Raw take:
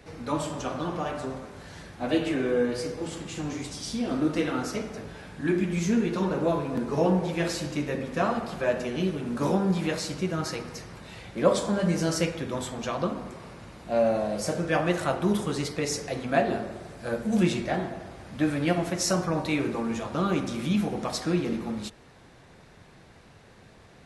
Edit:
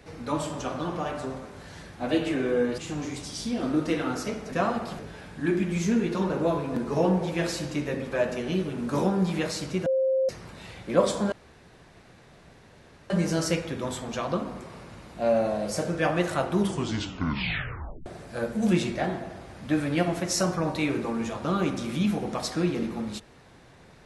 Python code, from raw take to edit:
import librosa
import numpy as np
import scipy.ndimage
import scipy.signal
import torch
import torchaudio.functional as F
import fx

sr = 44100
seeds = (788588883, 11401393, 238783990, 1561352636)

y = fx.edit(x, sr, fx.cut(start_s=2.78, length_s=0.48),
    fx.move(start_s=8.13, length_s=0.47, to_s=5.0),
    fx.bleep(start_s=10.34, length_s=0.43, hz=528.0, db=-20.5),
    fx.insert_room_tone(at_s=11.8, length_s=1.78),
    fx.tape_stop(start_s=15.3, length_s=1.46), tone=tone)